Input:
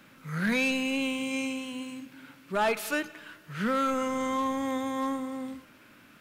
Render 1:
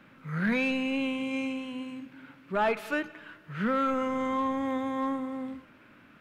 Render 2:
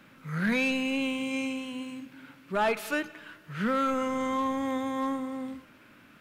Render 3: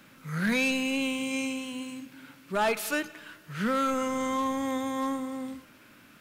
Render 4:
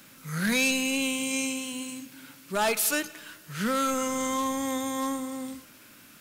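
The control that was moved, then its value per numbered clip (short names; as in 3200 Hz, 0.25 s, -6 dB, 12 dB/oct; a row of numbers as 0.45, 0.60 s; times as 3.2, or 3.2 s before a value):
tone controls, treble: -15, -5, +3, +14 dB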